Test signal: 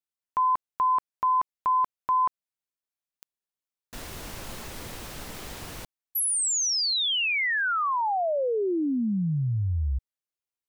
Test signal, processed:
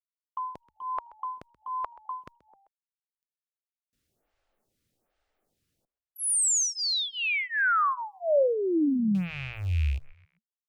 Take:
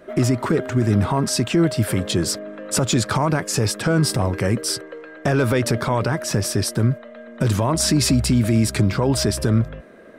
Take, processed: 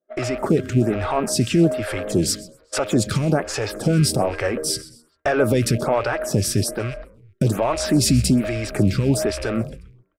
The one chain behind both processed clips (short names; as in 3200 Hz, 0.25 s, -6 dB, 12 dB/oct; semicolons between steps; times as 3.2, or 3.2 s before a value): rattling part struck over -28 dBFS, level -27 dBFS; gate -29 dBFS, range -39 dB; bell 640 Hz +4 dB 1.1 oct; notch 1000 Hz, Q 6.4; frequency-shifting echo 0.13 s, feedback 44%, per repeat -78 Hz, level -19.5 dB; photocell phaser 1.2 Hz; gain +2 dB